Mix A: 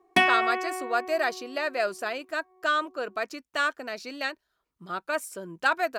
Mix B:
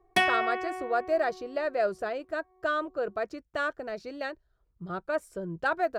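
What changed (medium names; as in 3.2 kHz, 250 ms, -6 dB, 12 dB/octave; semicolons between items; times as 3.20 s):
speech: add tilt EQ -4.5 dB/octave; master: add fifteen-band graphic EQ 250 Hz -12 dB, 1 kHz -5 dB, 2.5 kHz -5 dB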